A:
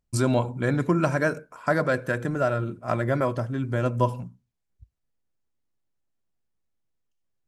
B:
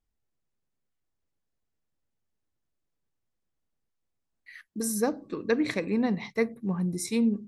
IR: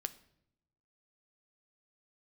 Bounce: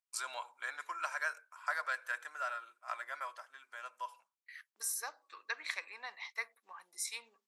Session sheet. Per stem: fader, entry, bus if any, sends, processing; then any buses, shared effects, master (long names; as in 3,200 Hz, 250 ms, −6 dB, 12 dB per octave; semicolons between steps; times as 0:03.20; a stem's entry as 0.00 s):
−7.0 dB, 0.00 s, no send, automatic ducking −6 dB, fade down 1.95 s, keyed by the second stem
−3.0 dB, 0.00 s, no send, Chebyshev high-pass filter 160 Hz, order 2; noise gate with hold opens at −43 dBFS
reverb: not used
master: high-pass filter 990 Hz 24 dB per octave